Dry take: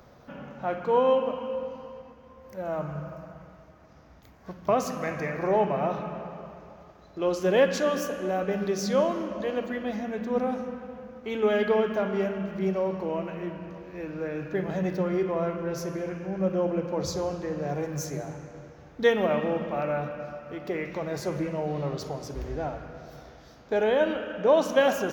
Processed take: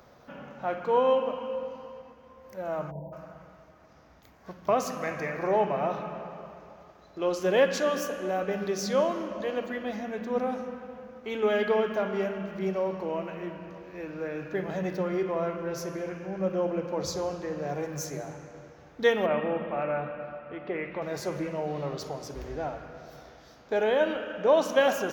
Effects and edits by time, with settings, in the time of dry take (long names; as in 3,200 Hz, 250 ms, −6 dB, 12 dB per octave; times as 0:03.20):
0:02.91–0:03.13: time-frequency box erased 1,000–11,000 Hz
0:19.26–0:21.02: low-pass filter 3,100 Hz 24 dB per octave
whole clip: low-shelf EQ 260 Hz −6.5 dB